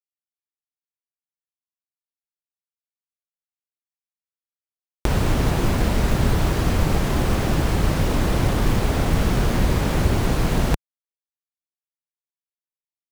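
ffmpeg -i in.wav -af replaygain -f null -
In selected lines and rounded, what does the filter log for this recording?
track_gain = +8.1 dB
track_peak = 0.394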